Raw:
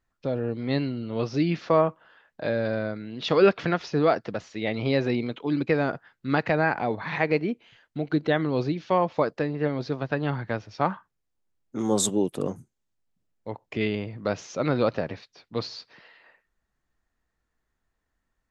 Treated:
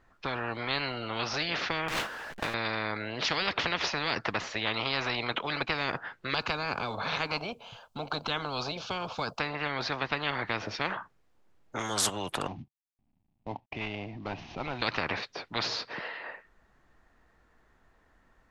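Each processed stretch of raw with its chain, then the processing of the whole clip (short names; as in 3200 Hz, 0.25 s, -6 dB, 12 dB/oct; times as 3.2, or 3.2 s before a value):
1.88–2.54 zero-crossing step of -29 dBFS + gate with hold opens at -24 dBFS, closes at -31 dBFS + compressor 4:1, threshold -33 dBFS
6.34–9.4 high shelf 7900 Hz +11.5 dB + fixed phaser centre 790 Hz, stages 4
12.47–14.82 CVSD 32 kbps + gate -51 dBFS, range -7 dB + EQ curve 140 Hz 0 dB, 280 Hz -6 dB, 480 Hz -26 dB, 750 Hz -10 dB, 1400 Hz -24 dB, 2600 Hz -12 dB, 11000 Hz -29 dB
whole clip: LPF 1300 Hz 6 dB/oct; low shelf 330 Hz -8 dB; spectral compressor 10:1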